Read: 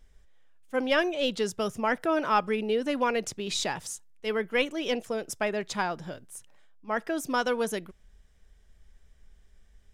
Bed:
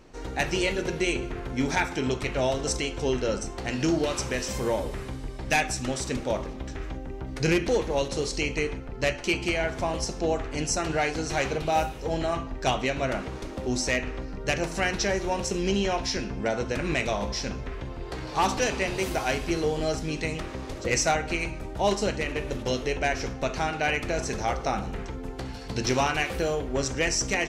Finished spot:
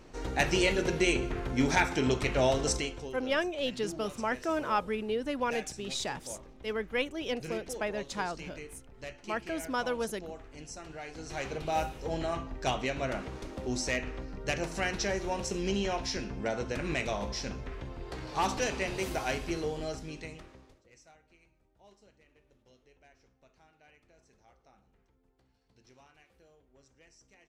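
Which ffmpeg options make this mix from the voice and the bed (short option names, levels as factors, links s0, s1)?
-filter_complex "[0:a]adelay=2400,volume=0.562[s0];[1:a]volume=3.76,afade=t=out:st=2.63:d=0.47:silence=0.141254,afade=t=in:st=11.04:d=0.79:silence=0.251189,afade=t=out:st=19.32:d=1.52:silence=0.0316228[s1];[s0][s1]amix=inputs=2:normalize=0"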